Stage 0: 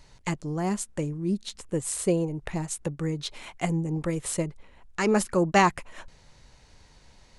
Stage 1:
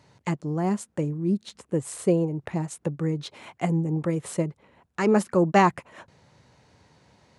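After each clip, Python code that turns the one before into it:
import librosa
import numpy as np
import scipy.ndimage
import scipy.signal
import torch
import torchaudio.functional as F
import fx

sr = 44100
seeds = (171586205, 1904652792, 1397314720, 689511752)

y = scipy.signal.sosfilt(scipy.signal.butter(4, 91.0, 'highpass', fs=sr, output='sos'), x)
y = fx.high_shelf(y, sr, hz=2100.0, db=-10.0)
y = F.gain(torch.from_numpy(y), 3.0).numpy()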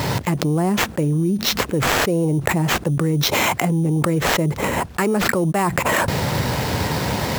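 y = fx.sample_hold(x, sr, seeds[0], rate_hz=9500.0, jitter_pct=0)
y = fx.env_flatten(y, sr, amount_pct=100)
y = F.gain(torch.from_numpy(y), -3.5).numpy()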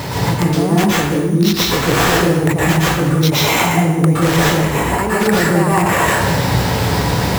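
y = x + 10.0 ** (-16.5 / 20.0) * np.pad(x, (int(198 * sr / 1000.0), 0))[:len(x)]
y = fx.rev_plate(y, sr, seeds[1], rt60_s=0.93, hf_ratio=0.75, predelay_ms=105, drr_db=-6.0)
y = F.gain(torch.from_numpy(y), -2.0).numpy()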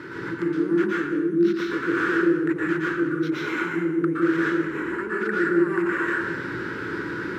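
y = fx.double_bandpass(x, sr, hz=710.0, octaves=2.1)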